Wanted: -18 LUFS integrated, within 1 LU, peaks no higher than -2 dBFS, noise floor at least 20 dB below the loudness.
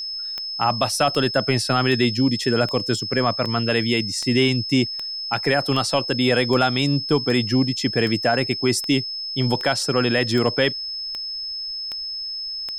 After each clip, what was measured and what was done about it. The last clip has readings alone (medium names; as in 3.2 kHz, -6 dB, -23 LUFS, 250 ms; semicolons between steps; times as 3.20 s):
clicks found 17; steady tone 5.2 kHz; tone level -27 dBFS; loudness -21.0 LUFS; peak level -5.5 dBFS; loudness target -18.0 LUFS
-> de-click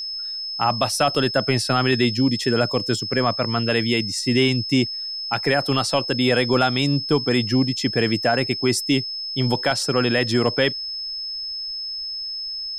clicks found 0; steady tone 5.2 kHz; tone level -27 dBFS
-> band-stop 5.2 kHz, Q 30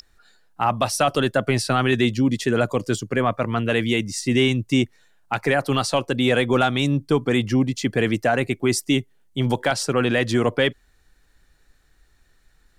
steady tone not found; loudness -21.5 LUFS; peak level -7.0 dBFS; loudness target -18.0 LUFS
-> trim +3.5 dB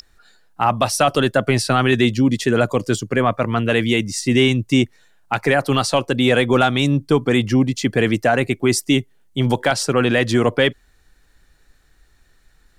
loudness -18.0 LUFS; peak level -3.5 dBFS; noise floor -57 dBFS